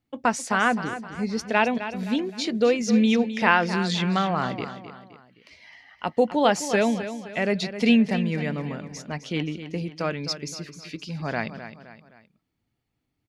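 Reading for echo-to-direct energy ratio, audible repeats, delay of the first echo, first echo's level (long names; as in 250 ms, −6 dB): −10.5 dB, 3, 260 ms, −11.5 dB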